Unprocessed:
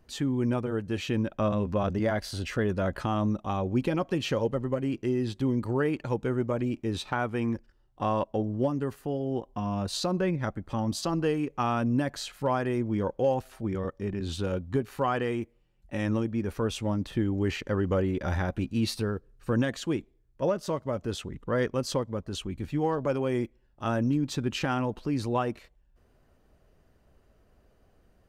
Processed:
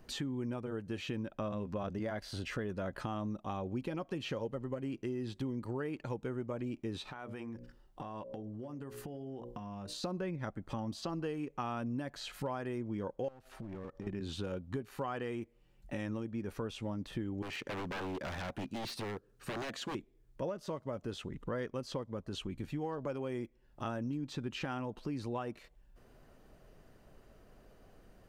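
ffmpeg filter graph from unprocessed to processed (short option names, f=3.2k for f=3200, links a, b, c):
-filter_complex "[0:a]asettb=1/sr,asplit=3[a][b][c];[a]atrim=end=7.094[d];[b]atrim=start=7.09:end=10.04,asetpts=PTS-STARTPTS,afade=t=in:d=0.004:c=qsin,afade=t=out:st=2.946:d=0.004:c=qsin,bandreject=f=60:t=h:w=6,bandreject=f=120:t=h:w=6,bandreject=f=180:t=h:w=6,bandreject=f=240:t=h:w=6,bandreject=f=300:t=h:w=6,bandreject=f=360:t=h:w=6,bandreject=f=420:t=h:w=6,bandreject=f=480:t=h:w=6,bandreject=f=540:t=h:w=6,bandreject=f=600:t=h:w=6,acompressor=threshold=-41dB:ratio=16:attack=3.2:release=140:knee=1:detection=peak[e];[c]atrim=start=10.036[f];[d][e]acrossfade=d=0.004:c1=hsin:c2=qsin[g];[g][f]acrossfade=d=0.004:c1=qsin:c2=hsin,asettb=1/sr,asplit=3[h][i][j];[h]atrim=end=13.284[k];[i]atrim=start=13.28:end=14.07,asetpts=PTS-STARTPTS,afade=t=in:d=0.004:c=qsin,afade=t=out:st=0.786:d=0.004:c=qsin,highshelf=f=4.9k:g=-7.5,aeval=exprs='clip(val(0),-1,0.02)':c=same,acompressor=threshold=-41dB:ratio=8:attack=3.2:release=140:knee=1:detection=peak[l];[j]atrim=start=14.066[m];[k][l]acrossfade=d=0.004:c1=hsin:c2=qsin[n];[n][m]acrossfade=d=0.004:c1=qsin:c2=hsin,asettb=1/sr,asplit=3[o][p][q];[o]atrim=end=17.424[r];[p]atrim=start=17.42:end=19.95,asetpts=PTS-STARTPTS,afade=t=in:d=0.004:c=qsin,afade=t=out:st=2.526:d=0.004:c=qsin,highpass=f=160:p=1,aeval=exprs='0.0335*(abs(mod(val(0)/0.0335+3,4)-2)-1)':c=same[s];[q]atrim=start=19.946[t];[r][s]acrossfade=d=0.004:c1=hsin:c2=qsin[u];[u][t]acrossfade=d=0.004:c1=qsin:c2=hsin,acrossover=split=4400[v][w];[w]acompressor=threshold=-47dB:ratio=4:attack=1:release=60[x];[v][x]amix=inputs=2:normalize=0,equalizer=f=69:t=o:w=0.5:g=-12.5,acompressor=threshold=-45dB:ratio=3,volume=4.5dB"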